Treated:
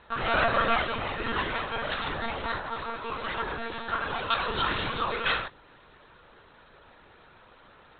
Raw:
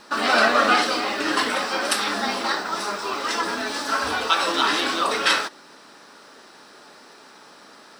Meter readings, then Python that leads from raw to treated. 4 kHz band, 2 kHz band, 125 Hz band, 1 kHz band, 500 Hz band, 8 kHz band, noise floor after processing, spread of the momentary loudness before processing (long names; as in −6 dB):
−10.0 dB, −7.5 dB, +7.5 dB, −7.0 dB, −6.5 dB, below −40 dB, −56 dBFS, 9 LU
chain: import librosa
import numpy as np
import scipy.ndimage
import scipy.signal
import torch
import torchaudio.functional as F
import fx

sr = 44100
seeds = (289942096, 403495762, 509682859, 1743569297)

y = fx.lpc_monotone(x, sr, seeds[0], pitch_hz=230.0, order=16)
y = y * 10.0 ** (-6.5 / 20.0)